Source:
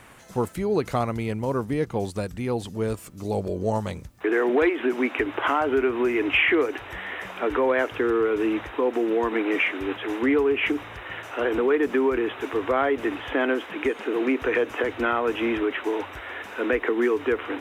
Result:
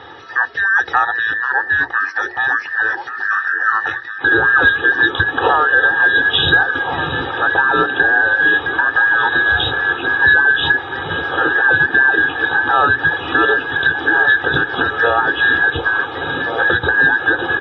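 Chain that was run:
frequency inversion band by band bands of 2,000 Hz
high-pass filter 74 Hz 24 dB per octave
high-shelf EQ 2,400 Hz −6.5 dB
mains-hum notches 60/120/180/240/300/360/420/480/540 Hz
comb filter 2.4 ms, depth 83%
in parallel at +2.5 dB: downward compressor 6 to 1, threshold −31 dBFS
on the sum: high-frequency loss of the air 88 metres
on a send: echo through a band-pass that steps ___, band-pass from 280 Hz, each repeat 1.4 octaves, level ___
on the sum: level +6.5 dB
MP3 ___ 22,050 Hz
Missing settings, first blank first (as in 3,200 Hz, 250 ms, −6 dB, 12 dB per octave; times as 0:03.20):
712 ms, −3.5 dB, 24 kbit/s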